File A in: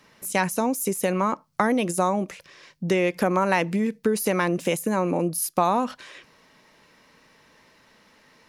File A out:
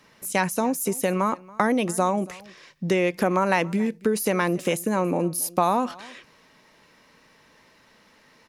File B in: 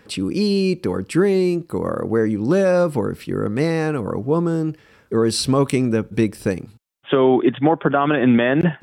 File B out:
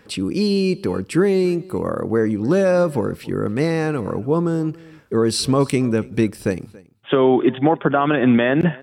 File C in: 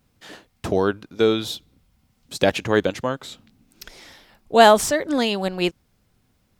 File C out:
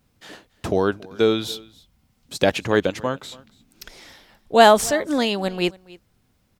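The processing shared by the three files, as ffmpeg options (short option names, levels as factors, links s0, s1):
-af "aecho=1:1:280:0.075"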